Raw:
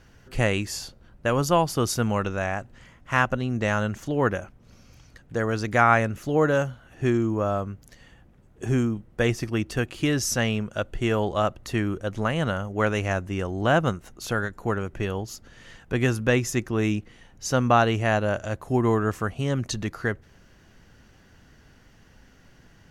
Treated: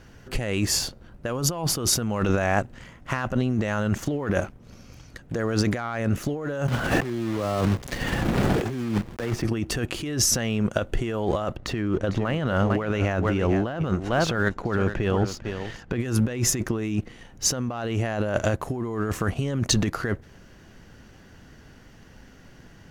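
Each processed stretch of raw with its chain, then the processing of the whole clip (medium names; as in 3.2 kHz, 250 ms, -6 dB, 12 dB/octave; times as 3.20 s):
6.68–9.44 s: block-companded coder 3-bit + treble shelf 7 kHz -10.5 dB + three bands compressed up and down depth 100%
11.56–16.00 s: low-pass 4.8 kHz + delay 451 ms -13.5 dB
whole clip: waveshaping leveller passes 1; peaking EQ 290 Hz +3 dB 2.5 oct; compressor with a negative ratio -25 dBFS, ratio -1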